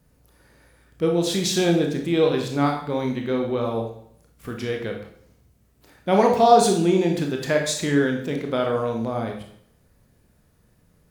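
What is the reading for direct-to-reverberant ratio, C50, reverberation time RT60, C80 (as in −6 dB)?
1.5 dB, 6.0 dB, 0.65 s, 9.0 dB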